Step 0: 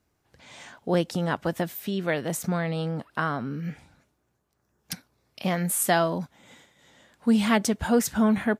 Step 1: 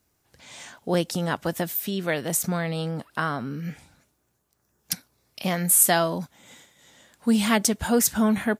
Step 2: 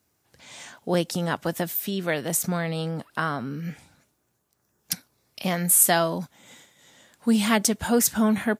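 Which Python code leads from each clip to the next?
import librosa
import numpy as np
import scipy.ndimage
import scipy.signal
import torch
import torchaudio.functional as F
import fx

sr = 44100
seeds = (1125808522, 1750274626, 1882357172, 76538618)

y1 = fx.high_shelf(x, sr, hz=4900.0, db=11.0)
y2 = scipy.signal.sosfilt(scipy.signal.butter(2, 77.0, 'highpass', fs=sr, output='sos'), y1)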